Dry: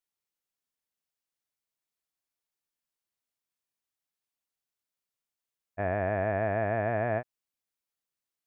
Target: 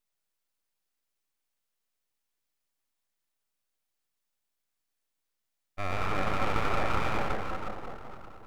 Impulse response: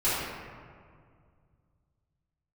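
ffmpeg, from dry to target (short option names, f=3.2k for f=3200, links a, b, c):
-filter_complex "[0:a]aemphasis=mode=production:type=cd,asplit=2[a][b];[1:a]atrim=start_sample=2205,asetrate=24255,aresample=44100,adelay=102[c];[b][c]afir=irnorm=-1:irlink=0,volume=-17.5dB[d];[a][d]amix=inputs=2:normalize=0,aeval=exprs='abs(val(0))':c=same"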